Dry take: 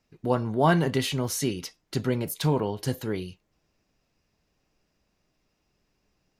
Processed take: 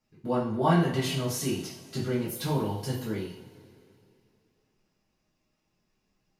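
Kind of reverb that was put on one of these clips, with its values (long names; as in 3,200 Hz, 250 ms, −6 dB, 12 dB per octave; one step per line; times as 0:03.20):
coupled-rooms reverb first 0.46 s, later 2.7 s, from −19 dB, DRR −7 dB
level −10.5 dB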